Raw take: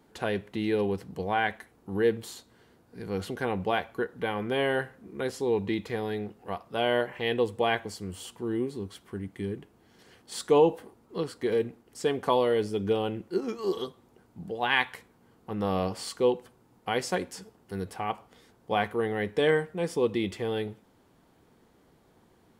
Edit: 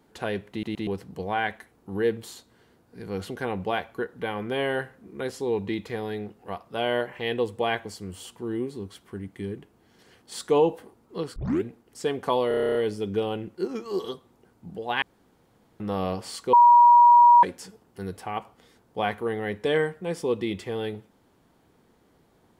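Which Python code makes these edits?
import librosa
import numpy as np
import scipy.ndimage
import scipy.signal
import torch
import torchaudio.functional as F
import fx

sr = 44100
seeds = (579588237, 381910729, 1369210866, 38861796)

y = fx.edit(x, sr, fx.stutter_over(start_s=0.51, slice_s=0.12, count=3),
    fx.tape_start(start_s=11.36, length_s=0.28),
    fx.stutter(start_s=12.48, slice_s=0.03, count=10),
    fx.room_tone_fill(start_s=14.75, length_s=0.78),
    fx.bleep(start_s=16.26, length_s=0.9, hz=958.0, db=-10.5), tone=tone)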